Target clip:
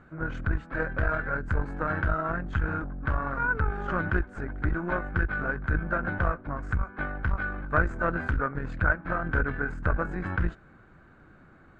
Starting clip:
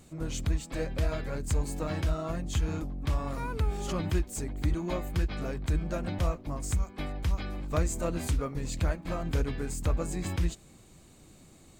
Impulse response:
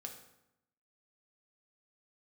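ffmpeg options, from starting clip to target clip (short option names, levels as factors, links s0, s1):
-af "aeval=exprs='0.178*(cos(1*acos(clip(val(0)/0.178,-1,1)))-cos(1*PI/2))+0.0251*(cos(4*acos(clip(val(0)/0.178,-1,1)))-cos(4*PI/2))':c=same,lowpass=f=1500:t=q:w=10"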